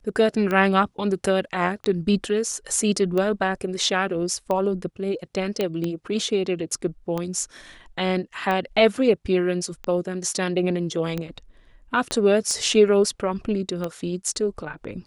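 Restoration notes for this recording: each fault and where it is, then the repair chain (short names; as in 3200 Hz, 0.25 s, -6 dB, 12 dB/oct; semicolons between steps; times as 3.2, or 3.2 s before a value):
tick 45 rpm -14 dBFS
5.61 pop -11 dBFS
12.11 pop -11 dBFS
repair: de-click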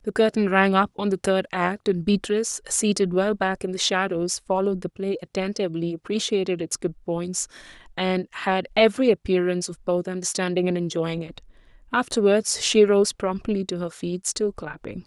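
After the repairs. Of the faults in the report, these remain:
12.11 pop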